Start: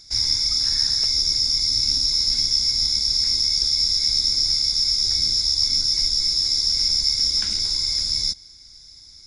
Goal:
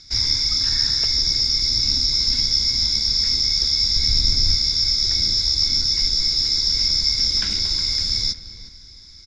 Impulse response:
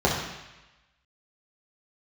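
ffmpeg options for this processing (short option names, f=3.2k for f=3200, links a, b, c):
-filter_complex "[0:a]acrossover=split=800[a][b];[a]adynamicsmooth=sensitivity=8:basefreq=530[c];[c][b]amix=inputs=2:normalize=0,lowpass=4.3k,asettb=1/sr,asplit=3[d][e][f];[d]atrim=end=3.964[g];[e]atrim=start=3.96:end=4.56,asetpts=PTS-STARTPTS,afade=t=in:d=0.004:c=qsin,afade=t=out:st=0.596:d=0.004:c=qsin,lowshelf=f=170:g=11[h];[f]atrim=start=4.556[i];[g][h]acrossfade=d=0.004:c1=hsin:c2=qsin[j];[j][i]acrossfade=d=0.004:c1=qsin:c2=hsin,asplit=2[k][l];[l]adelay=363,lowpass=f=2.1k:p=1,volume=-11.5dB,asplit=2[m][n];[n]adelay=363,lowpass=f=2.1k:p=1,volume=0.34,asplit=2[o][p];[p]adelay=363,lowpass=f=2.1k:p=1,volume=0.34,asplit=2[q][r];[r]adelay=363,lowpass=f=2.1k:p=1,volume=0.34[s];[k][m][o][q][s]amix=inputs=5:normalize=0,volume=6dB"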